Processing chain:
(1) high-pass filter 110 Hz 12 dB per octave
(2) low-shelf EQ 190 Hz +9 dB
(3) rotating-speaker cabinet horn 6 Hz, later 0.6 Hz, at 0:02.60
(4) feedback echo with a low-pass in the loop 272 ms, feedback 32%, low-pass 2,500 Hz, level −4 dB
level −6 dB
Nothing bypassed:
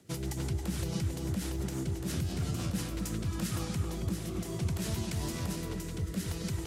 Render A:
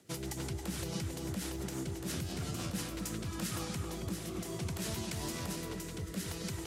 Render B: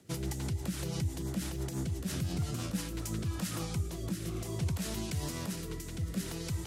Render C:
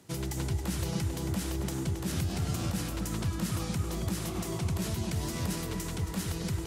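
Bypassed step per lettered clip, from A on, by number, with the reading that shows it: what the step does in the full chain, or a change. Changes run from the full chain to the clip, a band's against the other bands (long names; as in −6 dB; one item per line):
2, 125 Hz band −6.0 dB
4, echo-to-direct ratio −5.0 dB to none audible
3, change in integrated loudness +2.0 LU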